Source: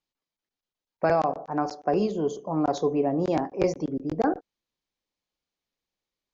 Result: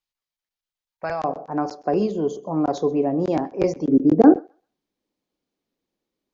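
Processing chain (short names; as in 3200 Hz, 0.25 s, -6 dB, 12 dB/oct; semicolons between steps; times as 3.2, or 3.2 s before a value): bell 290 Hz -11 dB 2.2 oct, from 1.24 s +4 dB, from 3.86 s +15 dB; thinning echo 0.131 s, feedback 22%, high-pass 860 Hz, level -23.5 dB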